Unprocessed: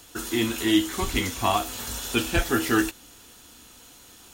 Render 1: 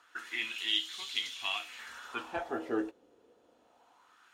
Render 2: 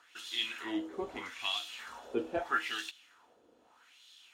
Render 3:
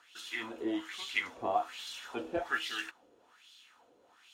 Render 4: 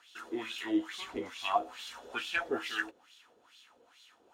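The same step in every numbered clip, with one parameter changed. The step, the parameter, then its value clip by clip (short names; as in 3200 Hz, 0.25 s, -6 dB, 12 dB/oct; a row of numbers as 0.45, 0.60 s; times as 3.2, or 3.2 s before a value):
wah, rate: 0.24, 0.79, 1.2, 2.3 Hz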